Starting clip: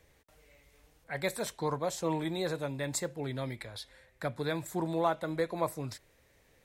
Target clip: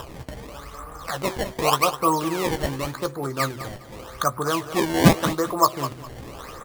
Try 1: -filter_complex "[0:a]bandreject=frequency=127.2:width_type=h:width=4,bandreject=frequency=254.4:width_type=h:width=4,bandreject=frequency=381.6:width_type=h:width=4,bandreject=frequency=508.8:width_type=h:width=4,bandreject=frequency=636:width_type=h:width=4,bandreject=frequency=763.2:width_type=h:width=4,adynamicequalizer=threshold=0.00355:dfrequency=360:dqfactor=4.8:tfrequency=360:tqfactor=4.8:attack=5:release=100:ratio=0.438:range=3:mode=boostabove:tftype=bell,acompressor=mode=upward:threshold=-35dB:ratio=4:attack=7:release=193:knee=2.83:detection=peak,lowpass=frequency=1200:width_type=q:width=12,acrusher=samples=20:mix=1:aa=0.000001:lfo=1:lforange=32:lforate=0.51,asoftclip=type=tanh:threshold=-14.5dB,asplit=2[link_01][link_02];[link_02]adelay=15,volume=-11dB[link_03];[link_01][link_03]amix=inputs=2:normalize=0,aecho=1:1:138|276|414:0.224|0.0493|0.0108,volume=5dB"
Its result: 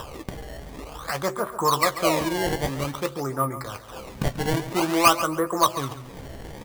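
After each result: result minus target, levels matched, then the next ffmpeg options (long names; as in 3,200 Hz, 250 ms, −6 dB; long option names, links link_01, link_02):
soft clipping: distortion +17 dB; echo 66 ms early; sample-and-hold swept by an LFO: distortion −5 dB
-filter_complex "[0:a]bandreject=frequency=127.2:width_type=h:width=4,bandreject=frequency=254.4:width_type=h:width=4,bandreject=frequency=381.6:width_type=h:width=4,bandreject=frequency=508.8:width_type=h:width=4,bandreject=frequency=636:width_type=h:width=4,bandreject=frequency=763.2:width_type=h:width=4,adynamicequalizer=threshold=0.00355:dfrequency=360:dqfactor=4.8:tfrequency=360:tqfactor=4.8:attack=5:release=100:ratio=0.438:range=3:mode=boostabove:tftype=bell,acompressor=mode=upward:threshold=-35dB:ratio=4:attack=7:release=193:knee=2.83:detection=peak,lowpass=frequency=1200:width_type=q:width=12,acrusher=samples=20:mix=1:aa=0.000001:lfo=1:lforange=32:lforate=0.51,asoftclip=type=tanh:threshold=-3.5dB,asplit=2[link_01][link_02];[link_02]adelay=15,volume=-11dB[link_03];[link_01][link_03]amix=inputs=2:normalize=0,aecho=1:1:138|276|414:0.224|0.0493|0.0108,volume=5dB"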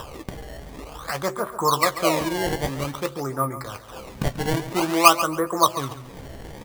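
echo 66 ms early; sample-and-hold swept by an LFO: distortion −5 dB
-filter_complex "[0:a]bandreject=frequency=127.2:width_type=h:width=4,bandreject=frequency=254.4:width_type=h:width=4,bandreject=frequency=381.6:width_type=h:width=4,bandreject=frequency=508.8:width_type=h:width=4,bandreject=frequency=636:width_type=h:width=4,bandreject=frequency=763.2:width_type=h:width=4,adynamicequalizer=threshold=0.00355:dfrequency=360:dqfactor=4.8:tfrequency=360:tqfactor=4.8:attack=5:release=100:ratio=0.438:range=3:mode=boostabove:tftype=bell,acompressor=mode=upward:threshold=-35dB:ratio=4:attack=7:release=193:knee=2.83:detection=peak,lowpass=frequency=1200:width_type=q:width=12,acrusher=samples=20:mix=1:aa=0.000001:lfo=1:lforange=32:lforate=0.51,asoftclip=type=tanh:threshold=-3.5dB,asplit=2[link_01][link_02];[link_02]adelay=15,volume=-11dB[link_03];[link_01][link_03]amix=inputs=2:normalize=0,aecho=1:1:204|408|612:0.224|0.0493|0.0108,volume=5dB"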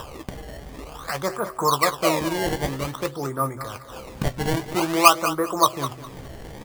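sample-and-hold swept by an LFO: distortion −5 dB
-filter_complex "[0:a]bandreject=frequency=127.2:width_type=h:width=4,bandreject=frequency=254.4:width_type=h:width=4,bandreject=frequency=381.6:width_type=h:width=4,bandreject=frequency=508.8:width_type=h:width=4,bandreject=frequency=636:width_type=h:width=4,bandreject=frequency=763.2:width_type=h:width=4,adynamicequalizer=threshold=0.00355:dfrequency=360:dqfactor=4.8:tfrequency=360:tqfactor=4.8:attack=5:release=100:ratio=0.438:range=3:mode=boostabove:tftype=bell,acompressor=mode=upward:threshold=-35dB:ratio=4:attack=7:release=193:knee=2.83:detection=peak,lowpass=frequency=1200:width_type=q:width=12,acrusher=samples=20:mix=1:aa=0.000001:lfo=1:lforange=32:lforate=0.86,asoftclip=type=tanh:threshold=-3.5dB,asplit=2[link_01][link_02];[link_02]adelay=15,volume=-11dB[link_03];[link_01][link_03]amix=inputs=2:normalize=0,aecho=1:1:204|408|612:0.224|0.0493|0.0108,volume=5dB"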